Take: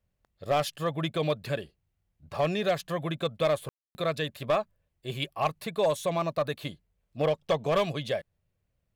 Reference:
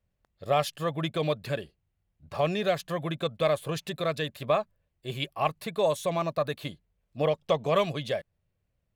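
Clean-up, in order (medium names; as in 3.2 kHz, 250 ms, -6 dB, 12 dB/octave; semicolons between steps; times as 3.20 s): clip repair -18.5 dBFS; room tone fill 3.69–3.95 s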